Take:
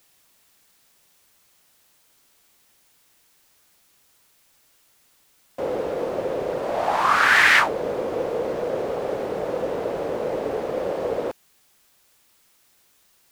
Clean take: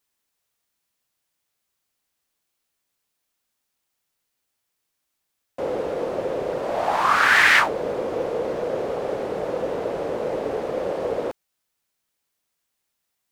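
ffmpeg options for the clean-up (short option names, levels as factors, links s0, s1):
-af "agate=range=0.0891:threshold=0.00224"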